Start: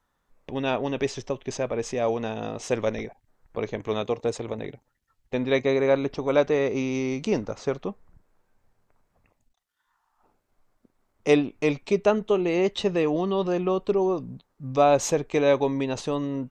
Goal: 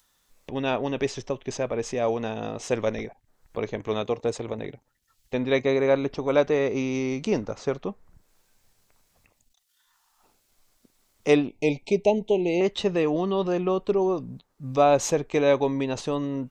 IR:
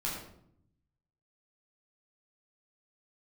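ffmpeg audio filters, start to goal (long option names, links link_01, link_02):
-filter_complex "[0:a]acrossover=split=2900[link_01][link_02];[link_02]acompressor=mode=upward:threshold=-54dB:ratio=2.5[link_03];[link_01][link_03]amix=inputs=2:normalize=0,asettb=1/sr,asplit=3[link_04][link_05][link_06];[link_04]atrim=end=11.484[link_07];[link_05]atrim=start=11.48:end=12.61,asetpts=PTS-STARTPTS,afade=type=in:duration=0.004:curve=qsin,afade=type=out:start_time=1.126:duration=0.004:curve=qsin,asuperstop=centerf=1400:order=12:qfactor=1.2[link_08];[link_06]atrim=start=12.606[link_09];[link_07][link_08]acrossfade=duration=0.004:curve1=hsin:curve2=qsin[link_10];[link_10][link_09]acrossfade=duration=0.004:curve1=qsin:curve2=hsin"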